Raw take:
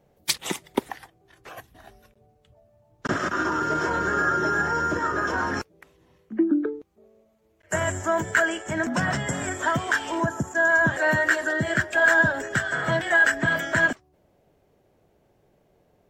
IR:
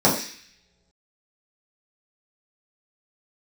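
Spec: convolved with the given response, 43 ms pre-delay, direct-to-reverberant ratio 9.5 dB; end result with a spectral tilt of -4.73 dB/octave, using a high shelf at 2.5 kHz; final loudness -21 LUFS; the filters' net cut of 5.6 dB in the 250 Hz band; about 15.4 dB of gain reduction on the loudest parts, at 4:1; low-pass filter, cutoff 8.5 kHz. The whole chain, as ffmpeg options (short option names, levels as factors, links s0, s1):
-filter_complex "[0:a]lowpass=8500,equalizer=f=250:t=o:g=-8,highshelf=f=2500:g=-6.5,acompressor=threshold=0.0158:ratio=4,asplit=2[s0][s1];[1:a]atrim=start_sample=2205,adelay=43[s2];[s1][s2]afir=irnorm=-1:irlink=0,volume=0.0335[s3];[s0][s3]amix=inputs=2:normalize=0,volume=6.31"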